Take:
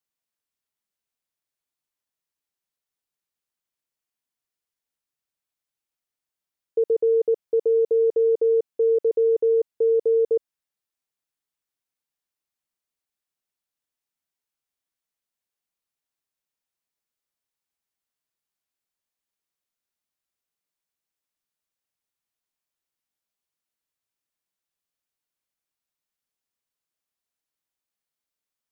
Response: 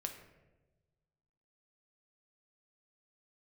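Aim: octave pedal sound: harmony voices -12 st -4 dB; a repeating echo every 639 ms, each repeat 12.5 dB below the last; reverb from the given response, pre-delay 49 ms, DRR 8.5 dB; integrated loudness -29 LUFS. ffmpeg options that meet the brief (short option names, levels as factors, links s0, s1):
-filter_complex "[0:a]aecho=1:1:639|1278|1917:0.237|0.0569|0.0137,asplit=2[s0][s1];[1:a]atrim=start_sample=2205,adelay=49[s2];[s1][s2]afir=irnorm=-1:irlink=0,volume=0.447[s3];[s0][s3]amix=inputs=2:normalize=0,asplit=2[s4][s5];[s5]asetrate=22050,aresample=44100,atempo=2,volume=0.631[s6];[s4][s6]amix=inputs=2:normalize=0,volume=0.299"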